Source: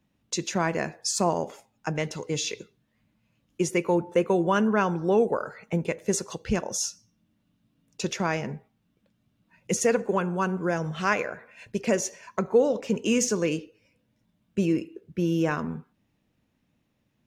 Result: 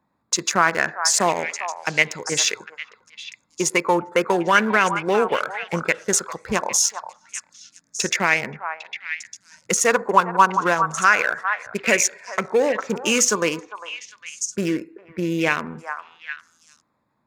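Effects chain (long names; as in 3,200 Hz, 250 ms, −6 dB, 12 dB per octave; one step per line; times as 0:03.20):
adaptive Wiener filter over 15 samples
dynamic equaliser 2,000 Hz, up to +3 dB, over −39 dBFS, Q 0.76
in parallel at +0.5 dB: output level in coarse steps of 13 dB
on the sum: spectral tilt +3 dB per octave
on a send: echo through a band-pass that steps 402 ms, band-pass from 1,000 Hz, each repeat 1.4 octaves, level −7 dB
on the sum: boost into a limiter +8 dB
auto-filter bell 0.29 Hz 990–2,300 Hz +10 dB
level −6.5 dB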